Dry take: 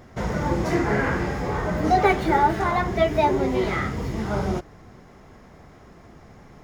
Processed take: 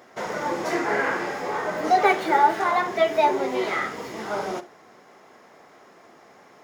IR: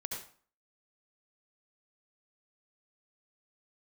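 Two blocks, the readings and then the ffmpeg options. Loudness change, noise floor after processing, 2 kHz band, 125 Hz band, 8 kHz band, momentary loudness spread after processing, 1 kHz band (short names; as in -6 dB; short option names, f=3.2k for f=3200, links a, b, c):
-0.5 dB, -52 dBFS, +1.5 dB, -18.0 dB, +1.5 dB, 11 LU, +1.5 dB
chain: -filter_complex "[0:a]highpass=420,asplit=2[a][b];[1:a]atrim=start_sample=2205,asetrate=74970,aresample=44100[c];[b][c]afir=irnorm=-1:irlink=0,volume=-7.5dB[d];[a][d]amix=inputs=2:normalize=0"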